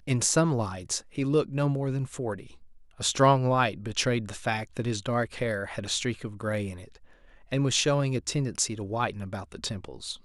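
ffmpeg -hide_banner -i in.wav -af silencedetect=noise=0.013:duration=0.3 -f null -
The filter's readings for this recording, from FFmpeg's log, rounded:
silence_start: 2.46
silence_end: 3.00 | silence_duration: 0.54
silence_start: 6.95
silence_end: 7.52 | silence_duration: 0.56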